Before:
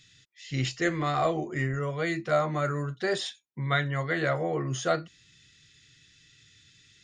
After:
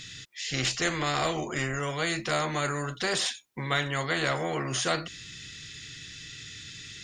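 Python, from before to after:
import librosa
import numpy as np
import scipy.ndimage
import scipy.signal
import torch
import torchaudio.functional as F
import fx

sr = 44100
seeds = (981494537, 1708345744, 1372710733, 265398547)

y = fx.spectral_comp(x, sr, ratio=2.0)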